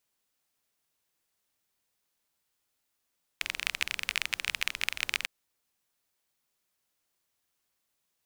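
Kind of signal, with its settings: rain from filtered ticks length 1.85 s, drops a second 25, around 2.4 kHz, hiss -20 dB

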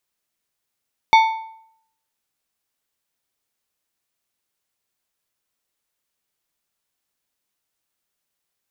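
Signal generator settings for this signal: metal hit plate, lowest mode 891 Hz, decay 0.69 s, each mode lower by 7 dB, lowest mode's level -6.5 dB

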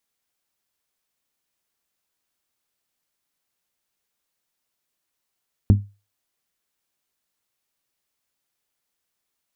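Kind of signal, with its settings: glass hit bell, lowest mode 101 Hz, decay 0.29 s, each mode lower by 6 dB, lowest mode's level -7 dB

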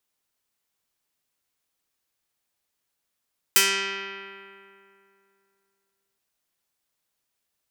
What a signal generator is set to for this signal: plucked string G3, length 2.62 s, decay 2.72 s, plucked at 0.35, medium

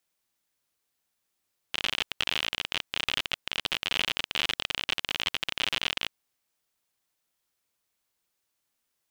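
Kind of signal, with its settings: random clicks 51 per s -11 dBFS 4.35 s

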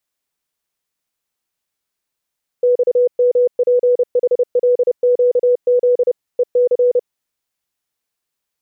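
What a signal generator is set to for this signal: Morse "XMPHLQZ EC" 30 wpm 492 Hz -9.5 dBFS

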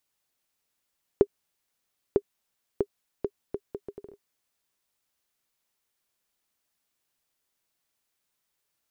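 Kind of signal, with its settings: bouncing ball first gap 0.95 s, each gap 0.68, 404 Hz, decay 58 ms -6.5 dBFS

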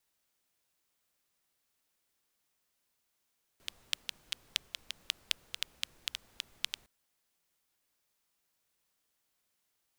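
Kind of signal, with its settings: rain from filtered ticks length 3.26 s, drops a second 5.6, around 3.2 kHz, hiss -21.5 dB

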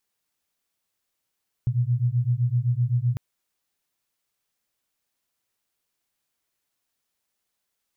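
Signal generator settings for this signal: beating tones 118 Hz, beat 7.8 Hz, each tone -23 dBFS 1.50 s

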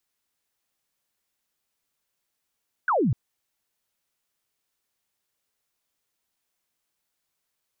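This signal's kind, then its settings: laser zap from 1.6 kHz, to 100 Hz, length 0.25 s sine, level -19 dB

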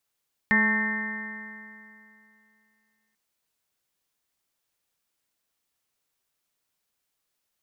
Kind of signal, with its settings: stretched partials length 2.64 s, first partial 214 Hz, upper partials -13/-18/-9/-10.5/-18/-11.5/4.5/-3 dB, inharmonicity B 0.002, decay 2.66 s, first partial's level -23 dB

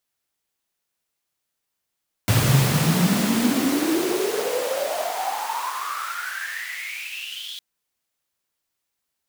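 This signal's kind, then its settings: swept filtered noise pink, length 5.31 s highpass, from 110 Hz, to 3.5 kHz, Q 12, exponential, gain ramp -17 dB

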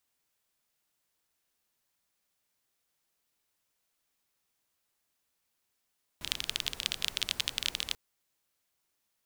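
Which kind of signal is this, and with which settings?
rain from filtered ticks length 1.74 s, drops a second 22, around 3.3 kHz, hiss -13 dB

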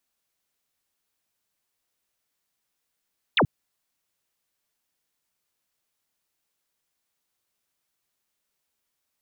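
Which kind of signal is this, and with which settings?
laser zap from 4.1 kHz, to 94 Hz, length 0.08 s sine, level -16 dB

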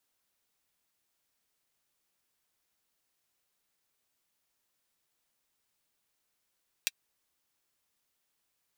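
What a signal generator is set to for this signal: closed hi-hat, high-pass 2.5 kHz, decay 0.04 s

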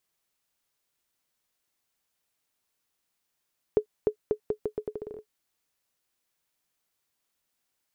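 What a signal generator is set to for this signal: bouncing ball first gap 0.30 s, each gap 0.8, 425 Hz, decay 89 ms -11.5 dBFS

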